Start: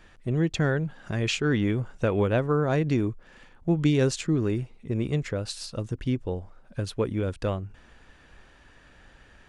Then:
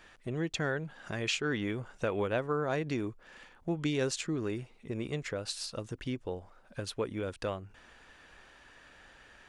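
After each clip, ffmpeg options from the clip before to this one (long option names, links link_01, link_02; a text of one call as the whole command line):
ffmpeg -i in.wav -filter_complex "[0:a]lowshelf=frequency=280:gain=-11.5,asplit=2[link_01][link_02];[link_02]acompressor=threshold=-38dB:ratio=6,volume=0.5dB[link_03];[link_01][link_03]amix=inputs=2:normalize=0,volume=-5.5dB" out.wav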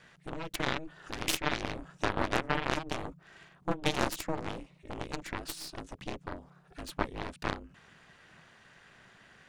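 ffmpeg -i in.wav -af "aeval=exprs='val(0)*sin(2*PI*160*n/s)':channel_layout=same,aeval=exprs='0.119*(cos(1*acos(clip(val(0)/0.119,-1,1)))-cos(1*PI/2))+0.0299*(cos(4*acos(clip(val(0)/0.119,-1,1)))-cos(4*PI/2))+0.0299*(cos(7*acos(clip(val(0)/0.119,-1,1)))-cos(7*PI/2))':channel_layout=same,volume=4dB" out.wav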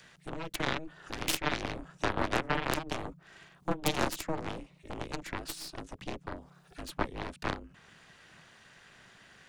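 ffmpeg -i in.wav -filter_complex "[0:a]acrossover=split=340|440|3100[link_01][link_02][link_03][link_04];[link_04]acompressor=mode=upward:threshold=-57dB:ratio=2.5[link_05];[link_01][link_02][link_03][link_05]amix=inputs=4:normalize=0,aeval=exprs='(mod(4.73*val(0)+1,2)-1)/4.73':channel_layout=same" out.wav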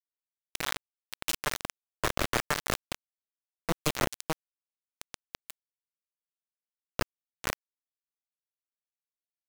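ffmpeg -i in.wav -af "acrusher=bits=3:mix=0:aa=0.000001" out.wav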